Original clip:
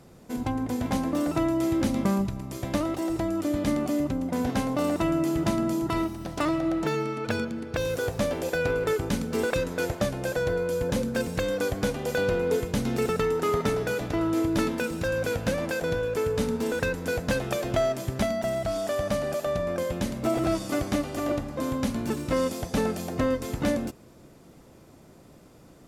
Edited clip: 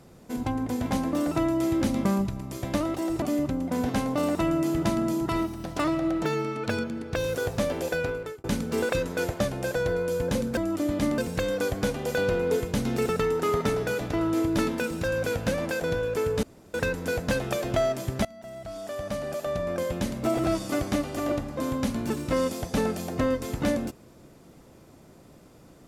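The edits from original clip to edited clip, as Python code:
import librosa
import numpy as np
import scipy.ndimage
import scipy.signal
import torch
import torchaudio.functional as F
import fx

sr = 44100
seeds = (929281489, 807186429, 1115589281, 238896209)

y = fx.edit(x, sr, fx.move(start_s=3.22, length_s=0.61, to_s=11.18),
    fx.fade_out_span(start_s=8.51, length_s=0.54),
    fx.room_tone_fill(start_s=16.43, length_s=0.31),
    fx.fade_in_from(start_s=18.25, length_s=1.59, floor_db=-22.0), tone=tone)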